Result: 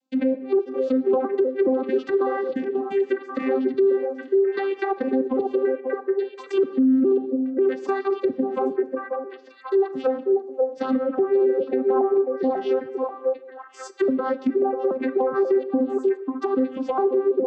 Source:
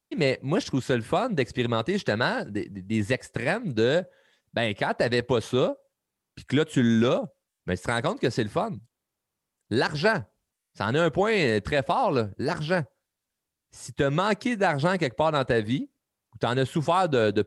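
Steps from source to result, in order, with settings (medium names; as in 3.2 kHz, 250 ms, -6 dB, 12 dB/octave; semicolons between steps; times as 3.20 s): vocoder on a broken chord bare fifth, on C4, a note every 414 ms; low-pass that closes with the level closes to 710 Hz, closed at -22.5 dBFS; repeats whose band climbs or falls 539 ms, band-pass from 520 Hz, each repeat 1.4 oct, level -1 dB; in parallel at -0.5 dB: compression, threshold -35 dBFS, peak gain reduction 19 dB; on the sum: LFO notch sine 3.7 Hz 400–2100 Hz; on a send at -14 dB: reverberation, pre-delay 3 ms; on the sum: peak limiter -18 dBFS, peak gain reduction 9 dB; trim +5 dB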